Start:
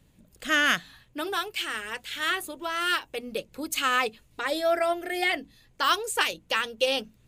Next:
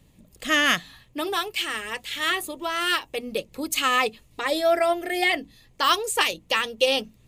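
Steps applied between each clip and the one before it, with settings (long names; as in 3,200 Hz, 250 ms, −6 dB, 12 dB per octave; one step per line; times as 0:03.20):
notch filter 1,500 Hz, Q 5.8
level +4 dB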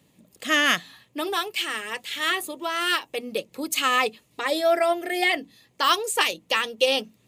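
high-pass filter 170 Hz 12 dB per octave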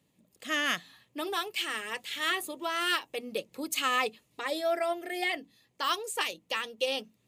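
speech leveller 2 s
level −8 dB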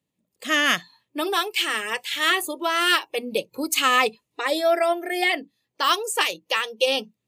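noise reduction from a noise print of the clip's start 18 dB
level +9 dB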